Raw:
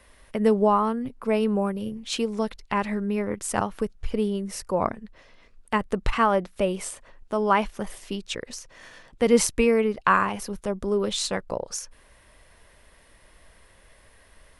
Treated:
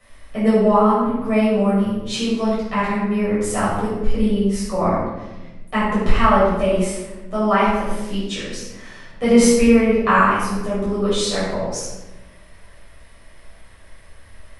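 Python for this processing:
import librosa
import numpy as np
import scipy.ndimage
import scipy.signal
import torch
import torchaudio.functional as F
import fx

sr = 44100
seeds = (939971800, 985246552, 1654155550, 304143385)

y = fx.room_shoebox(x, sr, seeds[0], volume_m3=550.0, walls='mixed', distance_m=6.2)
y = y * librosa.db_to_amplitude(-7.0)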